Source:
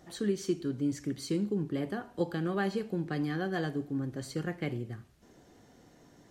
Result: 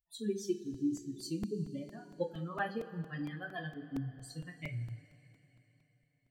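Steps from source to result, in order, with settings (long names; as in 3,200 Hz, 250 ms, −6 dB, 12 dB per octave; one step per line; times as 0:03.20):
spectral dynamics exaggerated over time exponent 3
coupled-rooms reverb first 0.27 s, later 3.9 s, from −21 dB, DRR 1 dB
regular buffer underruns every 0.23 s, samples 128, repeat, from 0:00.74
level −1 dB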